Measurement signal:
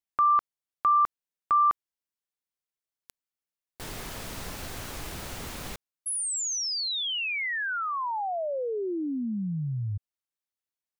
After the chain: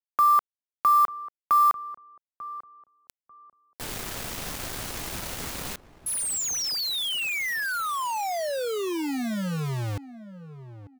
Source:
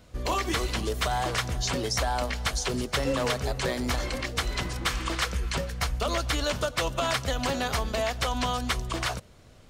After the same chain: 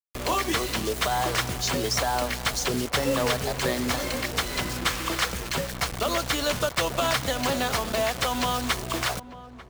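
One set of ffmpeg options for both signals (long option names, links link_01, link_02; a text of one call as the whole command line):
ffmpeg -i in.wav -filter_complex "[0:a]acrossover=split=110[link_01][link_02];[link_01]acompressor=threshold=-43dB:ratio=6:release=50:knee=1[link_03];[link_03][link_02]amix=inputs=2:normalize=0,acrusher=bits=5:mix=0:aa=0.000001,asplit=2[link_04][link_05];[link_05]adelay=893,lowpass=frequency=930:poles=1,volume=-14dB,asplit=2[link_06][link_07];[link_07]adelay=893,lowpass=frequency=930:poles=1,volume=0.29,asplit=2[link_08][link_09];[link_09]adelay=893,lowpass=frequency=930:poles=1,volume=0.29[link_10];[link_04][link_06][link_08][link_10]amix=inputs=4:normalize=0,volume=2.5dB" out.wav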